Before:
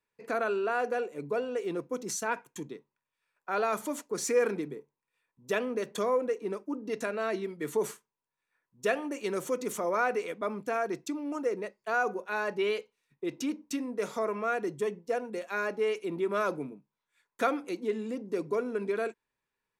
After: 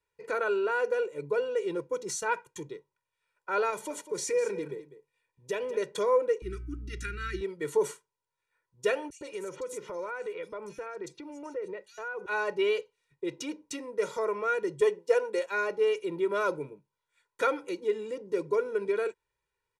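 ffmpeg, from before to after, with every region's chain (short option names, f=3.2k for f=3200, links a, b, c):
-filter_complex "[0:a]asettb=1/sr,asplit=3[a][b][c];[a]atrim=end=3.704[d];[b]atrim=start=3.7:end=5.77,asetpts=PTS-STARTPTS,afade=t=in:d=0.004:c=qsin,afade=t=out:st=2.066:d=0.004:c=qsin,equalizer=f=1.3k:w=5.2:g=-8,acompressor=threshold=-31dB:ratio=2:attack=3.2:release=140:knee=1:detection=peak,aecho=1:1:200:0.211,atrim=end_sample=91287[e];[c]atrim=start=5.766[f];[d][e]acrossfade=d=0.004:c1=hsin:c2=qsin[g];[g][f]acrossfade=d=0.004:c1=qsin:c2=hsin,asettb=1/sr,asplit=3[h][i][j];[h]atrim=end=6.424[k];[i]atrim=start=6.42:end=7.41,asetpts=PTS-STARTPTS,afade=t=in:d=0.004:c=qsin,afade=t=out:st=0.986:d=0.004:c=qsin,asuperstop=centerf=680:order=12:qfactor=0.77,bandreject=f=255.1:t=h:w=4,bandreject=f=510.2:t=h:w=4,bandreject=f=765.3:t=h:w=4,bandreject=f=1.0204k:t=h:w=4,bandreject=f=1.2755k:t=h:w=4,bandreject=f=1.5306k:t=h:w=4,bandreject=f=1.7857k:t=h:w=4,bandreject=f=2.0408k:t=h:w=4,bandreject=f=2.2959k:t=h:w=4,bandreject=f=2.551k:t=h:w=4,bandreject=f=2.8061k:t=h:w=4,bandreject=f=3.0612k:t=h:w=4,bandreject=f=3.3163k:t=h:w=4,bandreject=f=3.5714k:t=h:w=4,aeval=exprs='val(0)+0.00447*(sin(2*PI*60*n/s)+sin(2*PI*2*60*n/s)/2+sin(2*PI*3*60*n/s)/3+sin(2*PI*4*60*n/s)/4+sin(2*PI*5*60*n/s)/5)':c=same[l];[j]atrim=start=7.406[m];[k][l]acrossfade=d=0.004:c1=hsin:c2=qsin[n];[n][m]acrossfade=d=0.004:c1=qsin:c2=hsin,asettb=1/sr,asplit=3[o][p][q];[o]atrim=end=9.104[r];[p]atrim=start=9.1:end=12.26,asetpts=PTS-STARTPTS,afade=t=in:d=0.004:c=qsin,afade=t=out:st=3.156:d=0.004:c=qsin,lowpass=12k,acrossover=split=3700[s][t];[s]adelay=110[u];[u][t]amix=inputs=2:normalize=0,atrim=end_sample=139356,acompressor=threshold=-37dB:ratio=3:attack=3.2:release=140:knee=1:detection=peak[v];[q]atrim=start=12.256[w];[r][v]acrossfade=d=0.004:c1=hsin:c2=qsin[x];[x][w]acrossfade=d=0.004:c1=qsin:c2=hsin,asettb=1/sr,asplit=3[y][z][aa];[y]atrim=end=14.814[ab];[z]atrim=start=14.81:end=15.46,asetpts=PTS-STARTPTS,afade=t=in:d=0.004:c=qsin,afade=t=out:st=0.646:d=0.004:c=qsin,highpass=340,acontrast=32[ac];[aa]atrim=start=15.456[ad];[ab][ac]acrossfade=d=0.004:c1=hsin:c2=qsin[ae];[ae][ad]acrossfade=d=0.004:c1=qsin:c2=hsin,lowpass=f=11k:w=0.5412,lowpass=f=11k:w=1.3066,equalizer=f=62:w=1.2:g=7.5,aecho=1:1:2.1:0.8,volume=-1.5dB"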